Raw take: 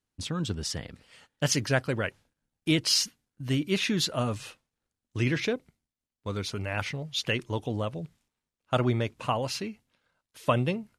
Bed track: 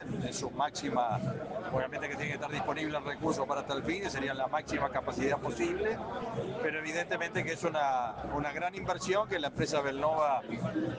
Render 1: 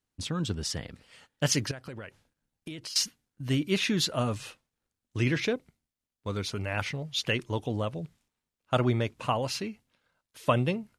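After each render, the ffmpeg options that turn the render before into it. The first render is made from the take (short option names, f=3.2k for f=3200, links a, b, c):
-filter_complex "[0:a]asettb=1/sr,asplit=3[a][b][c];[a]atrim=end=1.714[d];[b]atrim=start=1.71:end=2.96,asetpts=PTS-STARTPTS,afade=t=in:d=0.004:c=qsin,afade=t=out:st=1.246:d=0.004:c=qsin,acompressor=threshold=-36dB:ratio=16:attack=3.2:release=140:knee=1:detection=peak[e];[c]atrim=start=2.956[f];[d][e]acrossfade=d=0.004:c1=hsin:c2=qsin[g];[g][f]acrossfade=d=0.004:c1=qsin:c2=hsin"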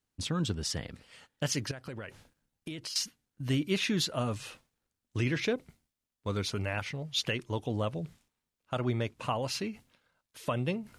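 -af "areverse,acompressor=mode=upward:threshold=-46dB:ratio=2.5,areverse,alimiter=limit=-19dB:level=0:latency=1:release=393"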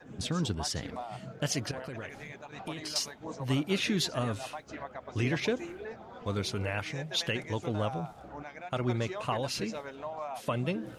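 -filter_complex "[1:a]volume=-9.5dB[a];[0:a][a]amix=inputs=2:normalize=0"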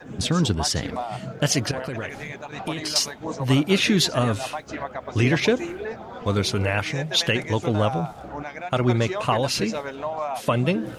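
-af "volume=10dB"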